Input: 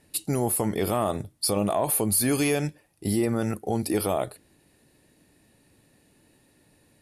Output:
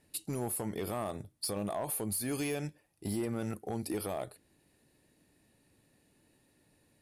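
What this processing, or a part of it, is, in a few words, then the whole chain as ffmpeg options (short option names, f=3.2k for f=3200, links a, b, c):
limiter into clipper: -af "alimiter=limit=-17dB:level=0:latency=1:release=445,asoftclip=type=hard:threshold=-20.5dB,volume=-7.5dB"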